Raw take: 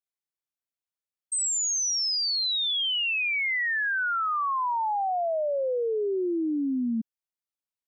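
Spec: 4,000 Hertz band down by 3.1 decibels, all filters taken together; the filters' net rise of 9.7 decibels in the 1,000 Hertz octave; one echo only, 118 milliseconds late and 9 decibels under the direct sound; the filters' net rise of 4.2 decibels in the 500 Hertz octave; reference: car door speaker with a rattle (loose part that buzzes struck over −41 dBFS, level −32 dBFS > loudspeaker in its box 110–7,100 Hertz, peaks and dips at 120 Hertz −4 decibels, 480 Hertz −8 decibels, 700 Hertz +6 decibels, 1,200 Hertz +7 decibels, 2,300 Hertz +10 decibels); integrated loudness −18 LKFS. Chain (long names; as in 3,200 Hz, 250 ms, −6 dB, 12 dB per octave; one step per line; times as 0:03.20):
parametric band 500 Hz +4 dB
parametric band 1,000 Hz +6 dB
parametric band 4,000 Hz −6 dB
single-tap delay 118 ms −9 dB
loose part that buzzes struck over −41 dBFS, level −32 dBFS
loudspeaker in its box 110–7,100 Hz, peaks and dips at 120 Hz −4 dB, 480 Hz −8 dB, 700 Hz +6 dB, 1,200 Hz +7 dB, 2,300 Hz +10 dB
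level +2.5 dB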